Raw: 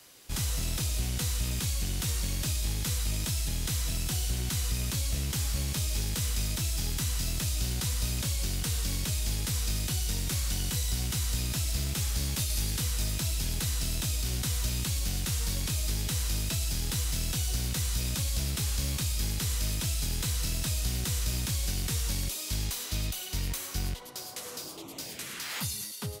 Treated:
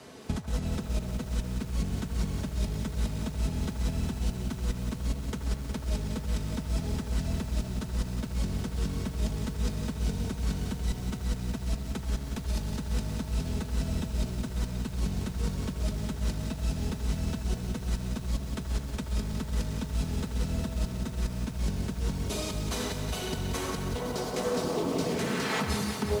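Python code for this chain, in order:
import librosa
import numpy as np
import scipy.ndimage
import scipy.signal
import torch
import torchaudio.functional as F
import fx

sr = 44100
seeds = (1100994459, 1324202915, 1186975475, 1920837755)

y = scipy.signal.sosfilt(scipy.signal.butter(4, 68.0, 'highpass', fs=sr, output='sos'), x)
y = fx.high_shelf(y, sr, hz=2000.0, db=-11.0)
y = fx.over_compress(y, sr, threshold_db=-40.0, ratio=-0.5)
y = scipy.signal.sosfilt(scipy.signal.butter(2, 9200.0, 'lowpass', fs=sr, output='sos'), y)
y = fx.tilt_shelf(y, sr, db=4.5, hz=970.0)
y = y + 0.52 * np.pad(y, (int(4.6 * sr / 1000.0), 0))[:len(y)]
y = fx.echo_wet_bandpass(y, sr, ms=78, feedback_pct=63, hz=990.0, wet_db=-9)
y = fx.echo_crushed(y, sr, ms=182, feedback_pct=80, bits=9, wet_db=-7.5)
y = y * 10.0 ** (6.0 / 20.0)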